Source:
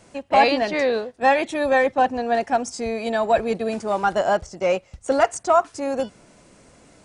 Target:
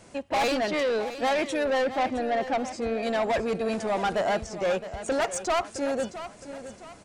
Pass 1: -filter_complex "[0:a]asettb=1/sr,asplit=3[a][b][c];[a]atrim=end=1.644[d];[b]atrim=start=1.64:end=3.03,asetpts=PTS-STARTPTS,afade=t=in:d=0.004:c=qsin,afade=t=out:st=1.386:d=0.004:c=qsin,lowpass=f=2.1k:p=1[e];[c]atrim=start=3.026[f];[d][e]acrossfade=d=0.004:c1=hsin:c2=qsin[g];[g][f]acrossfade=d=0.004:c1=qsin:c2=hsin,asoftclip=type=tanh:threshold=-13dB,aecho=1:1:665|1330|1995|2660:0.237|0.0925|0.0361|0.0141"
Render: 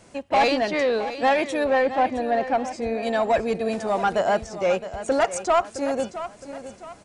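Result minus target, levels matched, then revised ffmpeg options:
soft clip: distortion -8 dB
-filter_complex "[0:a]asettb=1/sr,asplit=3[a][b][c];[a]atrim=end=1.644[d];[b]atrim=start=1.64:end=3.03,asetpts=PTS-STARTPTS,afade=t=in:d=0.004:c=qsin,afade=t=out:st=1.386:d=0.004:c=qsin,lowpass=f=2.1k:p=1[e];[c]atrim=start=3.026[f];[d][e]acrossfade=d=0.004:c1=hsin:c2=qsin[g];[g][f]acrossfade=d=0.004:c1=qsin:c2=hsin,asoftclip=type=tanh:threshold=-22dB,aecho=1:1:665|1330|1995|2660:0.237|0.0925|0.0361|0.0141"

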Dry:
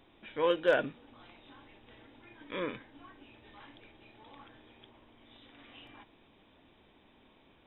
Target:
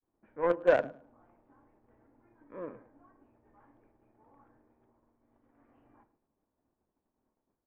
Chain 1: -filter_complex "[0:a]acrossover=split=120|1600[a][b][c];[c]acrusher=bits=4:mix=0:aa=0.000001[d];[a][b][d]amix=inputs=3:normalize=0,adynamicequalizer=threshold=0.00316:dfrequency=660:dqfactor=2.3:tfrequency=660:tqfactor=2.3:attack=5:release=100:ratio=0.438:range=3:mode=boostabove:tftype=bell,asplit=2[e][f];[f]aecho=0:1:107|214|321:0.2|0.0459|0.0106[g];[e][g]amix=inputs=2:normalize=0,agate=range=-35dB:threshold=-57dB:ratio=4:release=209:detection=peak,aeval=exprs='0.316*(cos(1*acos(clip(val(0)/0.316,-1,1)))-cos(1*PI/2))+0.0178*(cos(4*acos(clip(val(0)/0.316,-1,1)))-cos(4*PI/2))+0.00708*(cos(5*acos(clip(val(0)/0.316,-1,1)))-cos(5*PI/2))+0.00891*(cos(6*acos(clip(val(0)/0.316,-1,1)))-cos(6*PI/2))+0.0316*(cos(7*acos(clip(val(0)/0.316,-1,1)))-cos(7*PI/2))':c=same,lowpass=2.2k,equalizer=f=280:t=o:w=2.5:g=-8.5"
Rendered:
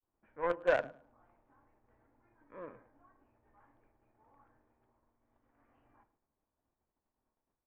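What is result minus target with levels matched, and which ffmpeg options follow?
250 Hz band -5.0 dB
-filter_complex "[0:a]acrossover=split=120|1600[a][b][c];[c]acrusher=bits=4:mix=0:aa=0.000001[d];[a][b][d]amix=inputs=3:normalize=0,adynamicequalizer=threshold=0.00316:dfrequency=660:dqfactor=2.3:tfrequency=660:tqfactor=2.3:attack=5:release=100:ratio=0.438:range=3:mode=boostabove:tftype=bell,asplit=2[e][f];[f]aecho=0:1:107|214|321:0.2|0.0459|0.0106[g];[e][g]amix=inputs=2:normalize=0,agate=range=-35dB:threshold=-57dB:ratio=4:release=209:detection=peak,aeval=exprs='0.316*(cos(1*acos(clip(val(0)/0.316,-1,1)))-cos(1*PI/2))+0.0178*(cos(4*acos(clip(val(0)/0.316,-1,1)))-cos(4*PI/2))+0.00708*(cos(5*acos(clip(val(0)/0.316,-1,1)))-cos(5*PI/2))+0.00891*(cos(6*acos(clip(val(0)/0.316,-1,1)))-cos(6*PI/2))+0.0316*(cos(7*acos(clip(val(0)/0.316,-1,1)))-cos(7*PI/2))':c=same,lowpass=2.2k"

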